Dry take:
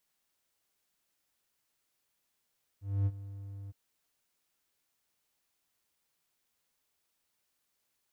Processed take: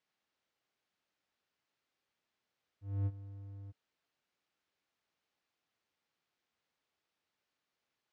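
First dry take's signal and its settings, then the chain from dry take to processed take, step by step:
ADSR triangle 99.1 Hz, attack 253 ms, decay 44 ms, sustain -16.5 dB, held 0.89 s, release 24 ms -22.5 dBFS
high-pass 120 Hz 6 dB/octave; distance through air 160 m; band-stop 980 Hz, Q 29

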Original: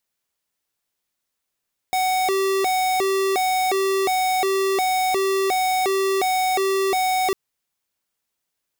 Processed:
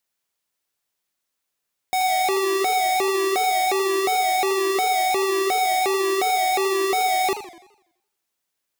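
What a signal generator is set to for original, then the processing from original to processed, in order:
siren hi-lo 387–746 Hz 1.4 per s square -20.5 dBFS 5.40 s
bass shelf 230 Hz -4.5 dB; modulated delay 84 ms, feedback 49%, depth 219 cents, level -12 dB

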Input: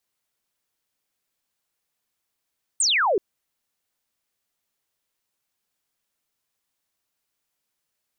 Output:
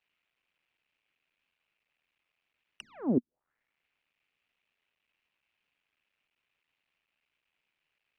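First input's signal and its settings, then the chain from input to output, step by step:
laser zap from 8.8 kHz, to 350 Hz, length 0.38 s sine, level -17.5 dB
cycle switcher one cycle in 3, muted; touch-sensitive low-pass 240–2600 Hz down, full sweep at -24.5 dBFS

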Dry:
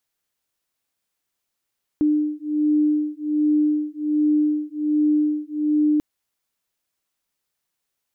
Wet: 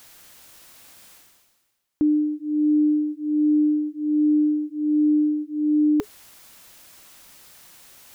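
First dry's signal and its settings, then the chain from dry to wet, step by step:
beating tones 300 Hz, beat 1.3 Hz, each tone -20.5 dBFS 3.99 s
band-stop 420 Hz, Q 12; reverse; upward compressor, threshold -24 dBFS; reverse

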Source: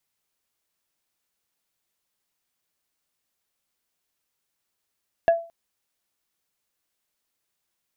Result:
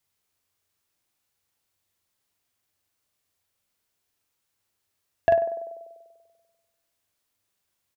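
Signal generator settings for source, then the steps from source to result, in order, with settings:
wood hit plate, length 0.22 s, lowest mode 671 Hz, decay 0.35 s, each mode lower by 12 dB, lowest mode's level -11 dB
peaking EQ 94 Hz +11.5 dB 0.43 oct; doubling 43 ms -4 dB; band-passed feedback delay 97 ms, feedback 67%, band-pass 490 Hz, level -9 dB

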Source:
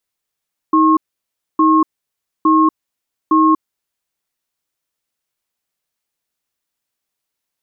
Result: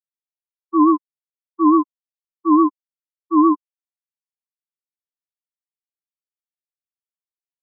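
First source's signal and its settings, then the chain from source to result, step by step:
cadence 316 Hz, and 1.08 kHz, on 0.24 s, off 0.62 s, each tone -11 dBFS 2.89 s
vibrato 7 Hz 95 cents; spectral contrast expander 4:1

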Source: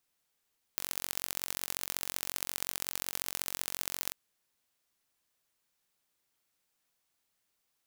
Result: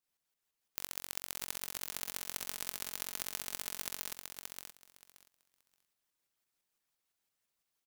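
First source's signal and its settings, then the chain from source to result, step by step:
pulse train 45.5 per s, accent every 3, -5 dBFS 3.36 s
harmonic-percussive split harmonic -11 dB; tremolo saw up 5.9 Hz, depth 55%; on a send: feedback delay 576 ms, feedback 17%, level -5 dB

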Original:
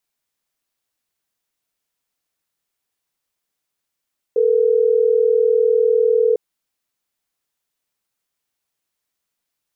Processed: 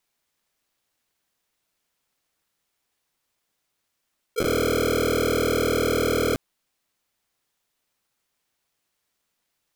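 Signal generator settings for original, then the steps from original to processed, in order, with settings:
call progress tone ringback tone, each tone -15 dBFS
square wave that keeps the level; slow attack 109 ms; integer overflow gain 18.5 dB

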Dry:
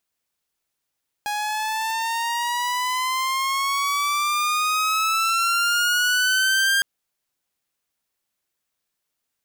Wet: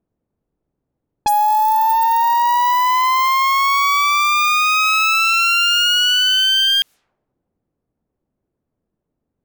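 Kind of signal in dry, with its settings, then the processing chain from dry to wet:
gliding synth tone saw, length 5.56 s, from 827 Hz, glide +11.5 st, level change +7 dB, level -14 dB
level-controlled noise filter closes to 340 Hz, open at -23 dBFS; in parallel at -3 dB: peak limiter -24 dBFS; on the sum: sine folder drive 12 dB, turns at -11.5 dBFS

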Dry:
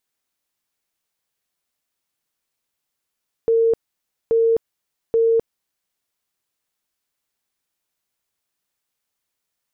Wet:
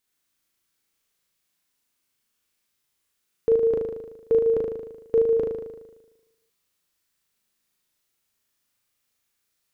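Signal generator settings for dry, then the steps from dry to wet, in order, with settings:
tone bursts 456 Hz, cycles 117, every 0.83 s, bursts 3, -13 dBFS
peaking EQ 730 Hz -5.5 dB 0.97 oct; flutter echo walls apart 6.5 m, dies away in 1.1 s

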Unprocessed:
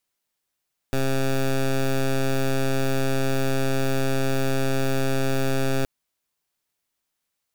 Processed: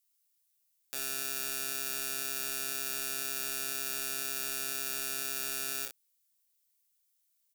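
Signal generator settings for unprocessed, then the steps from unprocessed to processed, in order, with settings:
pulse 134 Hz, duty 13% -21.5 dBFS 4.92 s
differentiator; on a send: early reflections 27 ms -4.5 dB, 59 ms -8 dB

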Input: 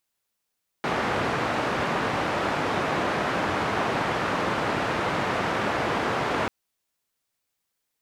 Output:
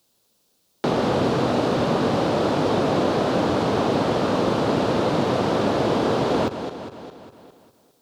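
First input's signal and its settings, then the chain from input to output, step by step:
noise band 98–1300 Hz, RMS -26 dBFS 5.64 s
backward echo that repeats 203 ms, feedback 46%, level -11 dB; graphic EQ 125/250/500/2000/4000 Hz +6/+7/+7/-9/+6 dB; three bands compressed up and down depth 40%

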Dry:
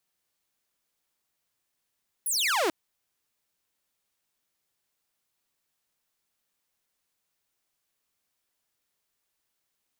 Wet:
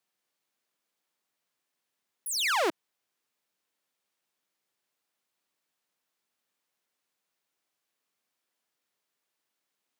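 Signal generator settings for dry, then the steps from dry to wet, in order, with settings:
laser zap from 12 kHz, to 300 Hz, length 0.44 s saw, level -20.5 dB
block-companded coder 7-bit; high-pass 180 Hz 12 dB/octave; treble shelf 5.6 kHz -6.5 dB

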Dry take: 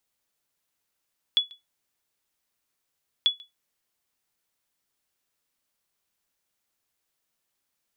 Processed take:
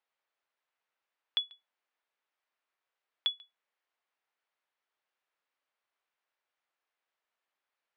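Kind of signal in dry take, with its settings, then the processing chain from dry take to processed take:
sonar ping 3.4 kHz, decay 0.17 s, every 1.89 s, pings 2, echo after 0.14 s, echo -25.5 dB -12.5 dBFS
band-pass 560–2400 Hz

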